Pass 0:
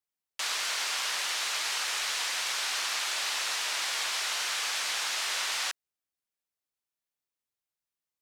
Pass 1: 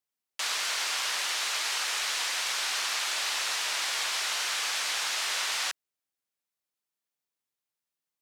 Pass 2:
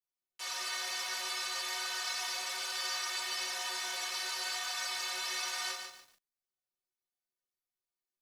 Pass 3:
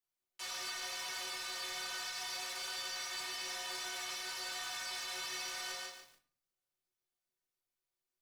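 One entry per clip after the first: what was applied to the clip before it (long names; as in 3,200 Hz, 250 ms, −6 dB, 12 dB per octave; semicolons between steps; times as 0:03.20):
high-pass filter 100 Hz; level +1 dB
stiff-string resonator 110 Hz, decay 0.3 s, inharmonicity 0.03; rectangular room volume 180 cubic metres, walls furnished, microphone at 3.8 metres; feedback echo at a low word length 145 ms, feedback 35%, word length 9 bits, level −6 dB; level −4.5 dB
brickwall limiter −31 dBFS, peak gain reduction 7 dB; soft clipping −37 dBFS, distortion −15 dB; rectangular room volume 51 cubic metres, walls mixed, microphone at 0.36 metres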